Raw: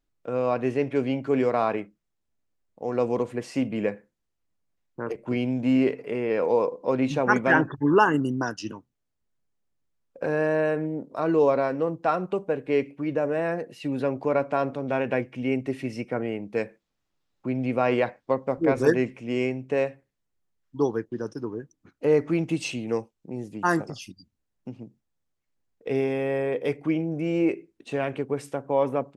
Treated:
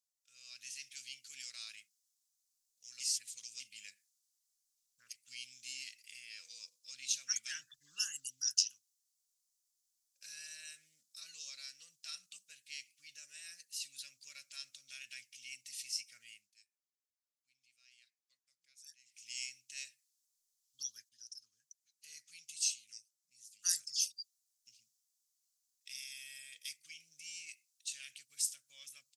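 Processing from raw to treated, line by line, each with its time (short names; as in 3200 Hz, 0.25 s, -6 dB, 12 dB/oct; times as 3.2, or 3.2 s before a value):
3–3.6 reverse
16.3–19.28 dip -22 dB, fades 0.24 s
21.09–23.64 gain -7 dB
whole clip: inverse Chebyshev high-pass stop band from 970 Hz, stop band 80 dB; tilt -3.5 dB/oct; AGC gain up to 10 dB; gain +13.5 dB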